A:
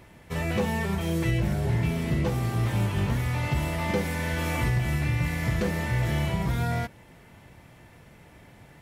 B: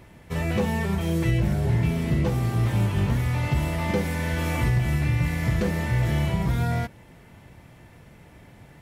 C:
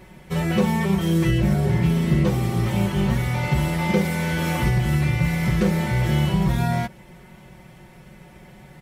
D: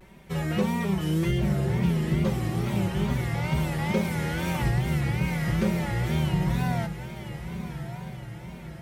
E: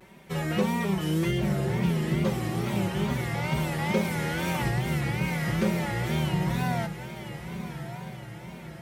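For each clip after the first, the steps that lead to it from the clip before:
bass shelf 380 Hz +3.5 dB
comb 5.4 ms, depth 91%; trim +1.5 dB
echo that smears into a reverb 1150 ms, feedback 53%, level -10.5 dB; wow and flutter 110 cents; trim -5.5 dB
high-pass 170 Hz 6 dB/octave; trim +1.5 dB

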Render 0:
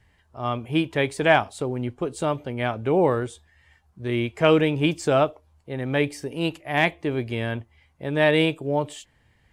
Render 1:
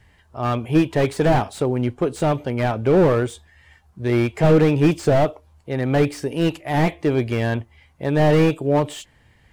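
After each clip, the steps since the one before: slew-rate limiter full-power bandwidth 57 Hz; trim +6.5 dB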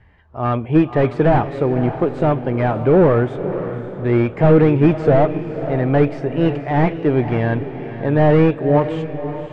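low-pass 2 kHz 12 dB/octave; echo that smears into a reverb 538 ms, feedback 43%, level -10.5 dB; trim +3 dB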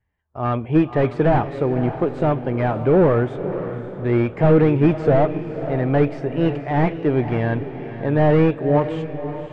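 gate with hold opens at -28 dBFS; trim -2.5 dB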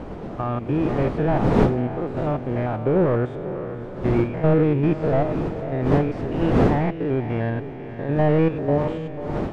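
spectrogram pixelated in time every 100 ms; wind noise 410 Hz -25 dBFS; trim -2.5 dB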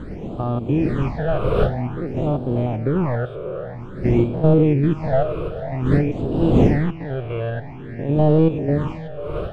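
phase shifter stages 8, 0.51 Hz, lowest notch 240–2000 Hz; trim +3 dB

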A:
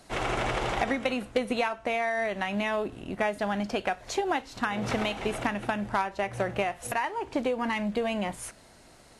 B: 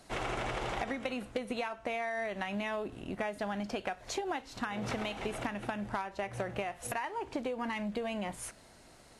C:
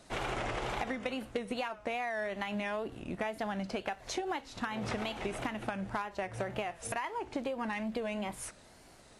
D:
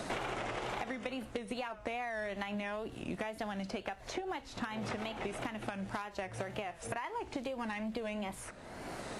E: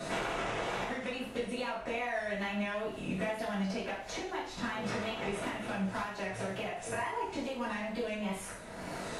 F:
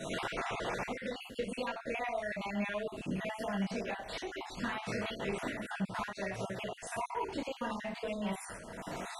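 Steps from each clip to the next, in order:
compression 3:1, threshold -30 dBFS, peak gain reduction 7.5 dB; trim -3 dB
wow and flutter 110 cents
three bands compressed up and down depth 100%; trim -3.5 dB
reverberation, pre-delay 3 ms, DRR -10 dB; trim -6.5 dB
random holes in the spectrogram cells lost 35%

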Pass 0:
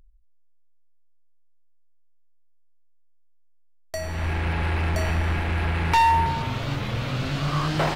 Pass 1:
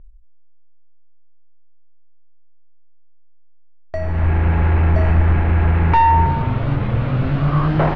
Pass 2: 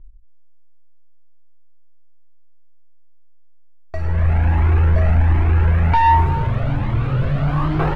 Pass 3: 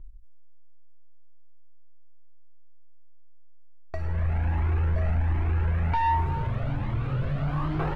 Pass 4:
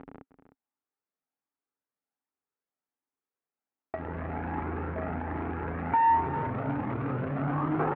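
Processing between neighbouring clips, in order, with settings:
low-pass 2 kHz 12 dB/octave; tilt EQ -1.5 dB/octave; trim +5 dB
waveshaping leveller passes 1; Shepard-style flanger rising 1.3 Hz
compression 1.5:1, threshold -41 dBFS, peak gain reduction 11 dB
jump at every zero crossing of -31 dBFS; cabinet simulation 160–2200 Hz, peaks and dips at 270 Hz +10 dB, 430 Hz +6 dB, 810 Hz +6 dB, 1.3 kHz +4 dB; delay 308 ms -12.5 dB; trim -3 dB

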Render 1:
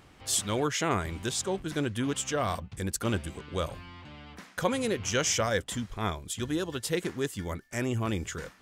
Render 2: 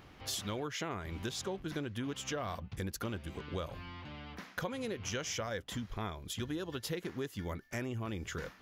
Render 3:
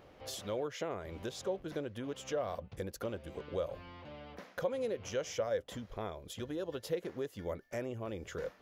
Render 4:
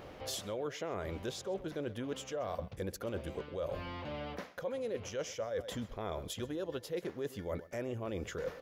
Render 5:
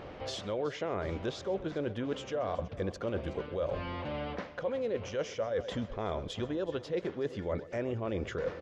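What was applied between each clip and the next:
peaking EQ 8.4 kHz -14.5 dB 0.44 oct; compression 6:1, threshold -35 dBFS, peak gain reduction 13.5 dB
peaking EQ 540 Hz +14 dB 0.89 oct; trim -6 dB
delay 129 ms -20.5 dB; reverse; compression 6:1, threshold -44 dBFS, peak gain reduction 15 dB; reverse; trim +8.5 dB
Gaussian low-pass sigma 1.6 samples; feedback delay 372 ms, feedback 50%, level -17.5 dB; trim +4.5 dB

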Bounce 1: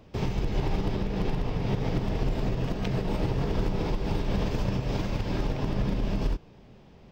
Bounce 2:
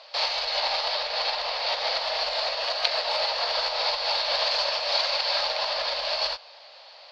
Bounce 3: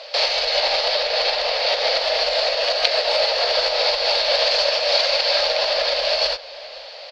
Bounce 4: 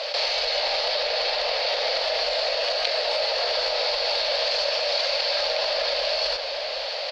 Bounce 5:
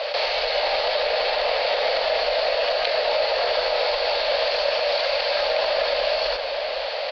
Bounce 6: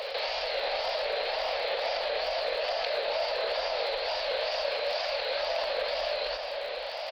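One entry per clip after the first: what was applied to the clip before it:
elliptic high-pass 570 Hz, stop band 40 dB; in parallel at -5 dB: saturation -36.5 dBFS, distortion -14 dB; on the sum: resonant low-pass 4.4 kHz, resonance Q 11; trim +6.5 dB
graphic EQ 125/500/1000/4000 Hz -9/+6/-10/-3 dB; in parallel at +1 dB: compression, threshold -36 dBFS, peak gain reduction 14 dB; on the sum: echo from a far wall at 88 m, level -19 dB; trim +6.5 dB
level flattener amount 70%; trim -8 dB
distance through air 240 m; trim +5.5 dB
wow and flutter 120 cents; pre-echo 288 ms -12.5 dB; crackle 61 per s -33 dBFS; trim -8.5 dB

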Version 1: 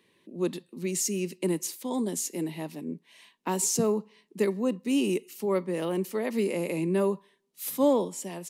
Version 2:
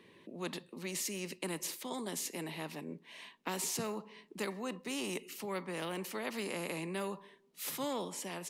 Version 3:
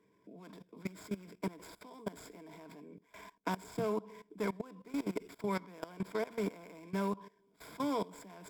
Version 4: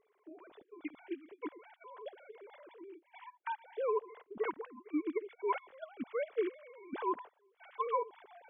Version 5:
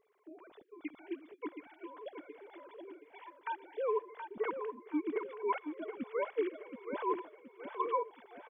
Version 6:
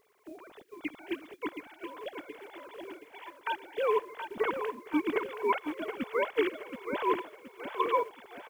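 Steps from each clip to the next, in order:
treble shelf 4.3 kHz -11.5 dB; spectrum-flattening compressor 2:1; trim -7 dB
median filter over 15 samples; rippled EQ curve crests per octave 1.7, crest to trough 11 dB; level held to a coarse grid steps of 19 dB; trim +5 dB
formants replaced by sine waves
feedback delay 723 ms, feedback 42%, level -7.5 dB
spectral contrast reduction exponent 0.68; trim +5.5 dB

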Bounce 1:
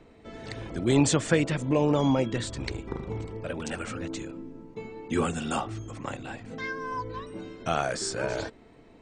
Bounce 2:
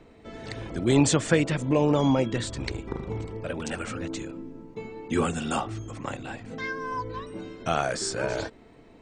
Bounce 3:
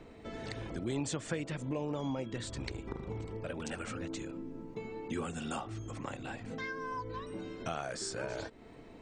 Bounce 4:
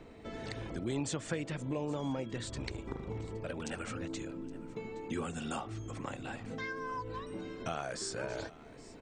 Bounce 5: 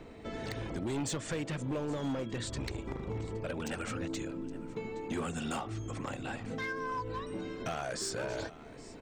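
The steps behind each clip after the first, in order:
endings held to a fixed fall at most 370 dB/s; trim +1.5 dB
compression 2.5:1, threshold -40 dBFS, peak gain reduction 16.5 dB
feedback delay 819 ms, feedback 29%, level -20 dB
overload inside the chain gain 33 dB; trim +3 dB

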